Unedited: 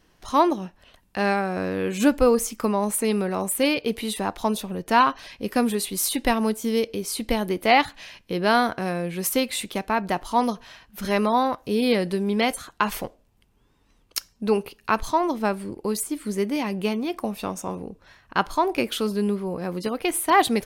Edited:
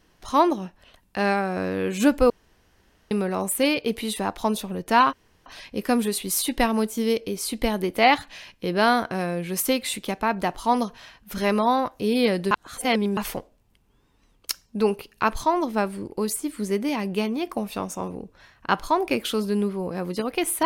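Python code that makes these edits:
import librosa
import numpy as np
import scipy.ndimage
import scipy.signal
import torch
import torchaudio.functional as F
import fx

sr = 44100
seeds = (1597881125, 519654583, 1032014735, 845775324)

y = fx.edit(x, sr, fx.room_tone_fill(start_s=2.3, length_s=0.81),
    fx.insert_room_tone(at_s=5.13, length_s=0.33),
    fx.reverse_span(start_s=12.18, length_s=0.66), tone=tone)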